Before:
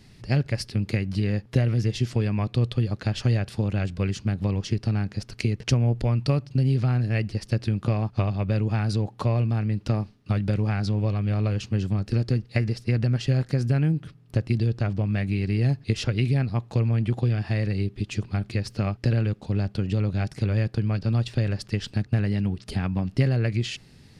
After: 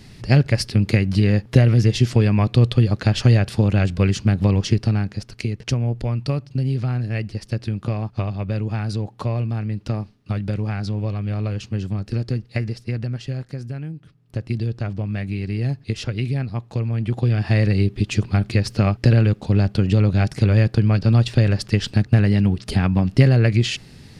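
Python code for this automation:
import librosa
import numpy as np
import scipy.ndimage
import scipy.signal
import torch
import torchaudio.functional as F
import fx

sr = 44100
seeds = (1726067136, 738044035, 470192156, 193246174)

y = fx.gain(x, sr, db=fx.line((4.69, 8.0), (5.36, 0.0), (12.62, 0.0), (13.97, -9.5), (14.5, -0.5), (16.91, -0.5), (17.55, 8.0)))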